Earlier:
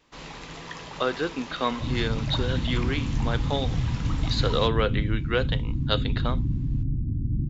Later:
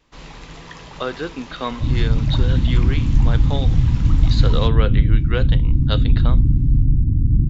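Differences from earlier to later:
second sound +5.0 dB; master: add low shelf 93 Hz +10.5 dB

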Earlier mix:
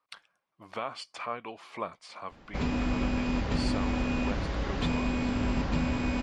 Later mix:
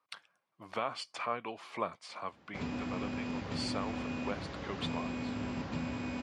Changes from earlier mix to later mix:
background -7.5 dB; master: add HPF 82 Hz 24 dB/oct

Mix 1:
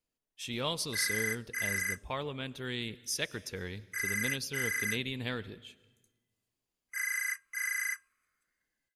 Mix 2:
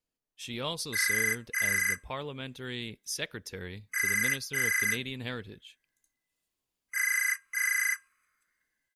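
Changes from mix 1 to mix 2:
background +5.5 dB; reverb: off

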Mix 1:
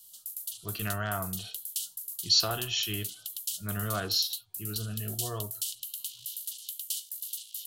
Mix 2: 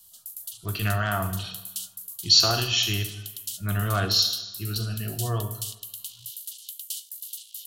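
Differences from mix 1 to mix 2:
speech +6.5 dB; reverb: on, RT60 1.0 s

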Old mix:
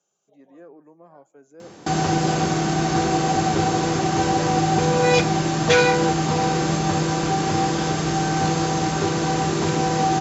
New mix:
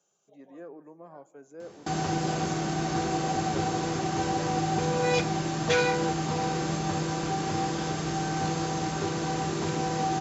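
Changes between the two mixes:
speech: send +8.5 dB; background -8.0 dB

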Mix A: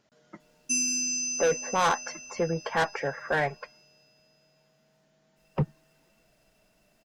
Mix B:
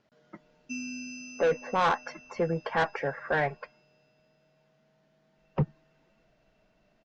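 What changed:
background: add air absorption 190 m; master: add air absorption 140 m

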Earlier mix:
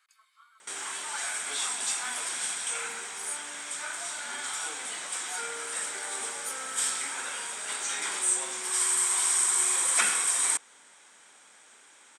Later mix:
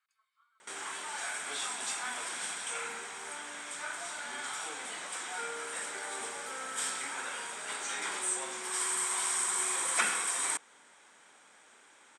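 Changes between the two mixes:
speech -11.0 dB; master: add high shelf 3100 Hz -8 dB

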